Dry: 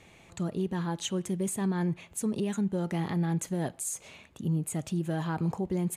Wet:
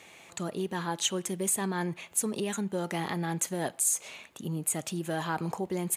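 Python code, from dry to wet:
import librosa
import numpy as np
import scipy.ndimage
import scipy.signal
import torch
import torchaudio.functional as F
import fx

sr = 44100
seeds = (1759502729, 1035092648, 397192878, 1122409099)

y = fx.highpass(x, sr, hz=590.0, slope=6)
y = fx.high_shelf(y, sr, hz=10000.0, db=6.0)
y = F.gain(torch.from_numpy(y), 5.5).numpy()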